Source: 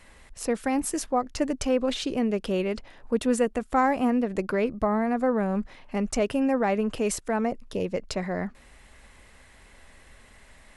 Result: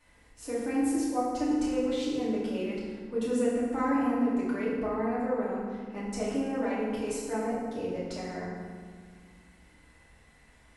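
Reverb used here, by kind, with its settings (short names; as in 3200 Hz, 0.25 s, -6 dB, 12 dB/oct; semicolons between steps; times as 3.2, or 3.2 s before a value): FDN reverb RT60 1.7 s, low-frequency decay 1.6×, high-frequency decay 0.65×, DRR -9 dB; gain -15.5 dB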